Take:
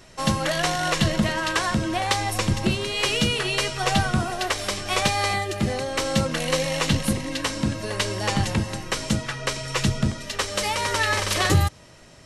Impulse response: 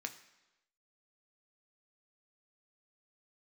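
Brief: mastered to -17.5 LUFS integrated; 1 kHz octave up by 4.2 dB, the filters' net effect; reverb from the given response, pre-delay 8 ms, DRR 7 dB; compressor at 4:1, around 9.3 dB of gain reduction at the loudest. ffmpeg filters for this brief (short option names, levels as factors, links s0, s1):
-filter_complex "[0:a]equalizer=f=1000:t=o:g=5.5,acompressor=threshold=0.0501:ratio=4,asplit=2[s0][s1];[1:a]atrim=start_sample=2205,adelay=8[s2];[s1][s2]afir=irnorm=-1:irlink=0,volume=0.501[s3];[s0][s3]amix=inputs=2:normalize=0,volume=3.55"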